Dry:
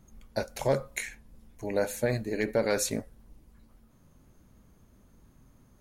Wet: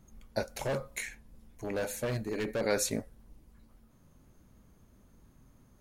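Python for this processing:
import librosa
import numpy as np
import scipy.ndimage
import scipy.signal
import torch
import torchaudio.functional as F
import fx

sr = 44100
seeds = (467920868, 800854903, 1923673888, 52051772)

y = fx.overload_stage(x, sr, gain_db=27.0, at=(0.59, 2.61))
y = y * 10.0 ** (-1.5 / 20.0)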